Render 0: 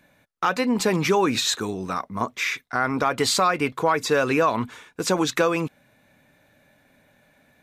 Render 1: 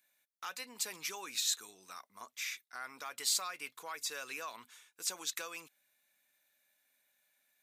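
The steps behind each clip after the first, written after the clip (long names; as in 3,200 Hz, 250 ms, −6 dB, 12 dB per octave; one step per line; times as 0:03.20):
first difference
level −6 dB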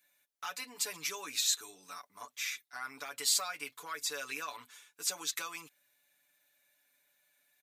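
comb filter 6.9 ms, depth 93%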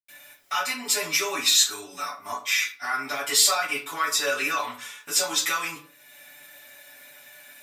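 in parallel at −2 dB: upward compression, threshold −39 dBFS
on the sum: convolution reverb RT60 0.45 s, pre-delay 84 ms
level −2.5 dB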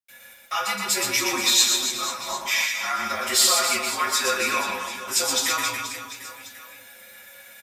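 reverse bouncing-ball delay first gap 120 ms, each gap 1.3×, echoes 5
frequency shifter −48 Hz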